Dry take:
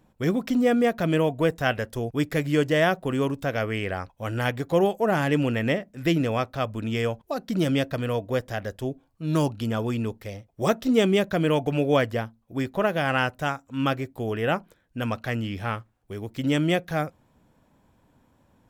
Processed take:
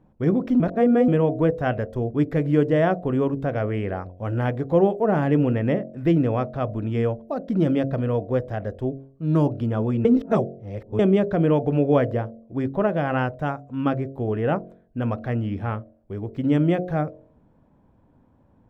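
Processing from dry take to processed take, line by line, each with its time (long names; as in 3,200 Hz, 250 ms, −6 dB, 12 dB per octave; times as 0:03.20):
0:00.60–0:01.08: reverse
0:10.05–0:10.99: reverse
whole clip: low-pass filter 2,300 Hz 6 dB per octave; tilt shelving filter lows +7 dB, about 1,400 Hz; hum removal 45.1 Hz, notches 16; level −2 dB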